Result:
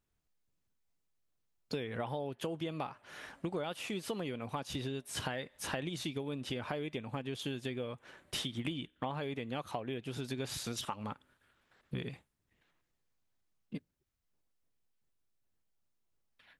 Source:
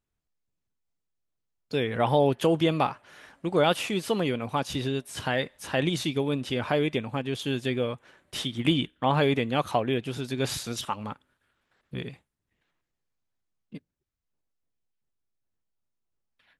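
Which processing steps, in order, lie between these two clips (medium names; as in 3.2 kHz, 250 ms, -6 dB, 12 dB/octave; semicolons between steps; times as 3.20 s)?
compression 12:1, threshold -36 dBFS, peak gain reduction 19.5 dB; trim +1.5 dB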